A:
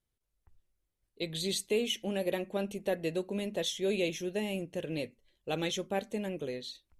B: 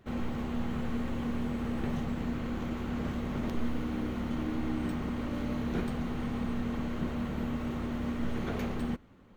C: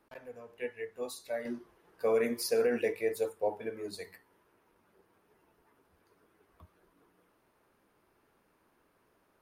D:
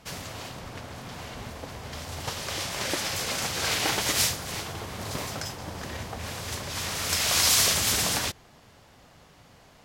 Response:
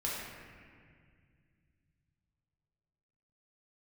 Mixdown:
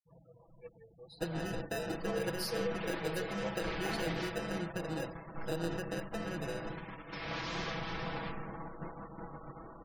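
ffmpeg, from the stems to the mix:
-filter_complex "[0:a]acrossover=split=140|1000|2000|5500[a][b][c][d][e];[a]acompressor=threshold=-54dB:ratio=4[f];[b]acompressor=threshold=-40dB:ratio=4[g];[c]acompressor=threshold=-59dB:ratio=4[h];[d]acompressor=threshold=-41dB:ratio=4[i];[e]acompressor=threshold=-60dB:ratio=4[j];[f][g][h][i][j]amix=inputs=5:normalize=0,aexciter=amount=3.2:drive=4.9:freq=5.5k,acrusher=samples=40:mix=1:aa=0.000001,volume=-3.5dB,asplit=3[k][l][m];[l]volume=-9dB[n];[1:a]equalizer=f=930:t=o:w=1.7:g=12.5,adelay=1800,volume=-15.5dB,asplit=2[o][p];[p]volume=-14dB[q];[2:a]equalizer=f=125:t=o:w=1:g=10,equalizer=f=250:t=o:w=1:g=-11,equalizer=f=500:t=o:w=1:g=-5,equalizer=f=1k:t=o:w=1:g=-4,equalizer=f=2k:t=o:w=1:g=-11,equalizer=f=4k:t=o:w=1:g=8,equalizer=f=8k:t=o:w=1:g=-4,asoftclip=type=hard:threshold=-31.5dB,volume=-6dB,asplit=2[r][s];[s]volume=-18dB[t];[3:a]lowpass=2.3k,volume=-16.5dB,asplit=2[u][v];[v]volume=-6dB[w];[m]apad=whole_len=492497[x];[o][x]sidechaincompress=threshold=-51dB:ratio=6:attack=16:release=1290[y];[4:a]atrim=start_sample=2205[z];[n][q][t][w]amix=inputs=4:normalize=0[aa];[aa][z]afir=irnorm=-1:irlink=0[ab];[k][y][r][u][ab]amix=inputs=5:normalize=0,agate=range=-9dB:threshold=-44dB:ratio=16:detection=peak,afftfilt=real='re*gte(hypot(re,im),0.00251)':imag='im*gte(hypot(re,im),0.00251)':win_size=1024:overlap=0.75,aecho=1:1:6.1:0.9"

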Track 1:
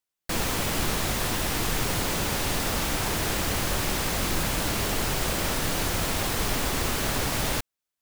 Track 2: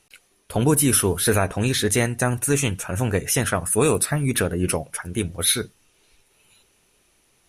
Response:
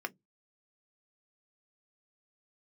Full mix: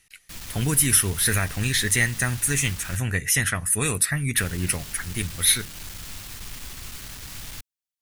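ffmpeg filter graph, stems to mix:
-filter_complex "[0:a]aeval=exprs='(tanh(22.4*val(0)+0.4)-tanh(0.4))/22.4':c=same,volume=-4dB,asplit=3[a][b][c];[a]atrim=end=2.97,asetpts=PTS-STARTPTS,afade=t=out:st=2.966:d=0.004:c=hsin[d];[b]atrim=start=2.97:end=4.37,asetpts=PTS-STARTPTS,volume=0[e];[c]atrim=start=4.37,asetpts=PTS-STARTPTS,afade=t=in:d=0.004:c=hsin[f];[d][e][f]concat=n=3:v=0:a=1[g];[1:a]equalizer=f=1.9k:t=o:w=0.33:g=11.5,bandreject=f=920:w=19,volume=1.5dB[h];[g][h]amix=inputs=2:normalize=0,equalizer=f=520:w=0.48:g=-14.5"

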